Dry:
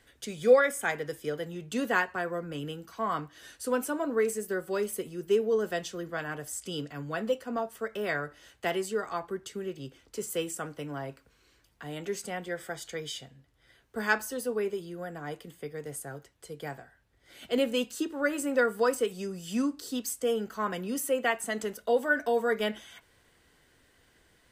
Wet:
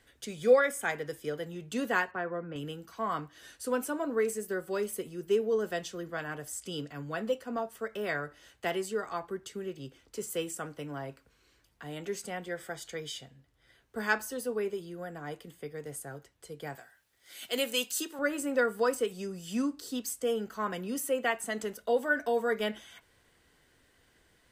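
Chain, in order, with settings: 2.11–2.56 BPF 100–2400 Hz; 16.75–18.19 tilt +3.5 dB/oct; gain -2 dB

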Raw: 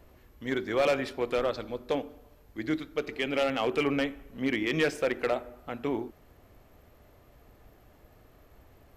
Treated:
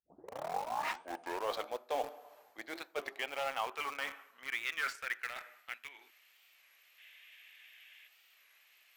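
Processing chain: tape start at the beginning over 1.69 s; reverse; compressor 16:1, threshold -36 dBFS, peak gain reduction 15.5 dB; reverse; spectral gain 6.98–8.07, 1500–3800 Hz +9 dB; high-pass sweep 720 Hz -> 2500 Hz, 3.02–6.28; in parallel at -7 dB: bit-crush 7-bit; on the sum: record warp 33 1/3 rpm, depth 160 cents; gain +1 dB

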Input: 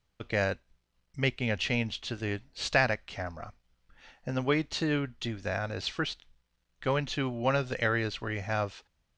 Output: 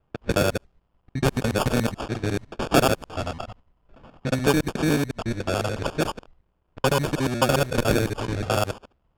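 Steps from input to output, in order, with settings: local time reversal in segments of 72 ms; sample-rate reducer 2000 Hz, jitter 0%; low-pass opened by the level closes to 2600 Hz, open at -25.5 dBFS; gain +7.5 dB

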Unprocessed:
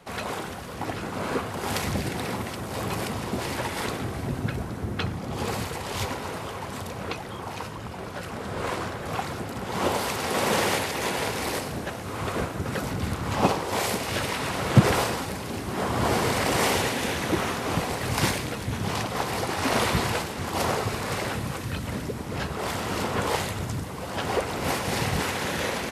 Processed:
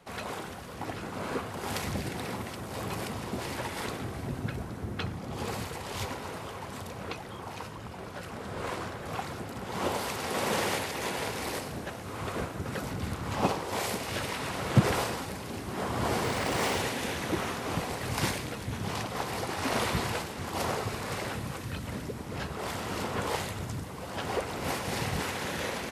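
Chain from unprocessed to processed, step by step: 16.24–16.8 median filter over 3 samples; gain -5.5 dB

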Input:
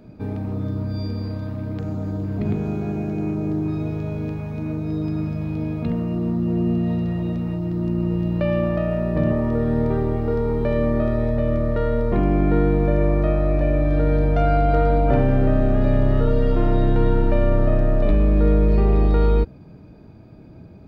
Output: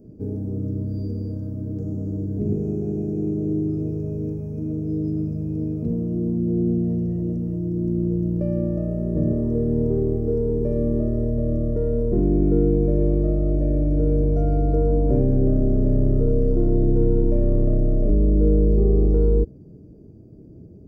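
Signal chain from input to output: EQ curve 240 Hz 0 dB, 420 Hz +4 dB, 990 Hz -22 dB, 3900 Hz -29 dB, 5600 Hz -4 dB; gain -1 dB

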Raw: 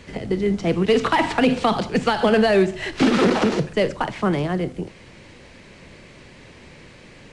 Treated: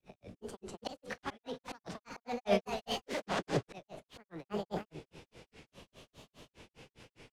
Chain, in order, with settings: on a send: feedback echo 0.22 s, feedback 37%, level -11 dB; on the sum: auto swell 0.442 s; grains 0.163 s, grains 4.9/s, pitch spread up and down by 3 st; formant shift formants +5 st; gain -8.5 dB

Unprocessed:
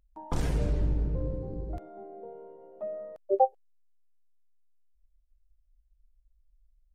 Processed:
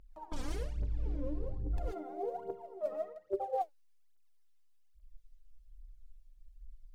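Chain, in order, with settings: bell 3900 Hz +4 dB 2.3 oct; non-linear reverb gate 0.16 s rising, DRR -1 dB; phaser 1.2 Hz, delay 4 ms, feedback 80%; reverse; compressor 16:1, threshold -28 dBFS, peak gain reduction 23 dB; reverse; gain -3 dB

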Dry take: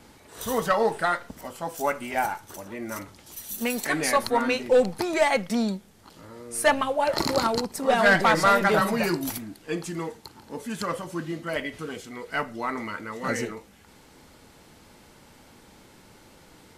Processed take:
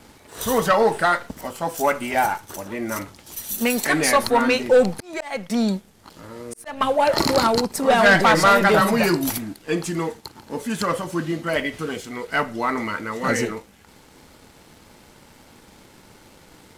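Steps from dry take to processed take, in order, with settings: 4.95–6.81 auto swell 0.523 s; sample leveller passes 1; gain +3 dB

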